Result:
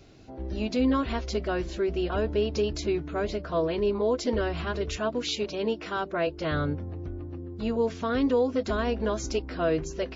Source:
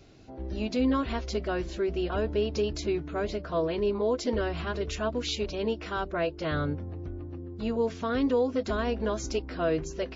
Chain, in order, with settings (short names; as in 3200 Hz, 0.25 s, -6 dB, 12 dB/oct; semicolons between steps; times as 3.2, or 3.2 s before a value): 4.97–6.27 HPF 130 Hz 12 dB/oct; gain +1.5 dB